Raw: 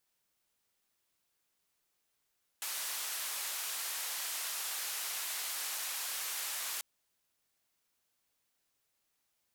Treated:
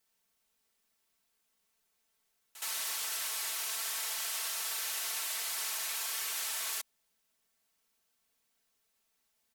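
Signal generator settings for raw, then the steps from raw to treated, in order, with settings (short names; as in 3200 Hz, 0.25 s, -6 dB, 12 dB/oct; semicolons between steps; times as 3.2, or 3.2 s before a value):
noise band 810–15000 Hz, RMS -38.5 dBFS 4.19 s
comb 4.5 ms, depth 72%; reverse echo 69 ms -13 dB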